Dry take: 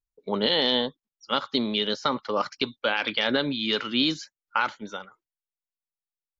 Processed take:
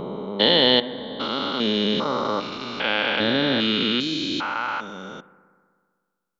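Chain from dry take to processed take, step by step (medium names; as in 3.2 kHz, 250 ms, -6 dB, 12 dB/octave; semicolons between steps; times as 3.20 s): spectrogram pixelated in time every 400 ms; bucket-brigade echo 63 ms, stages 1024, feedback 79%, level -19 dB; trim +8 dB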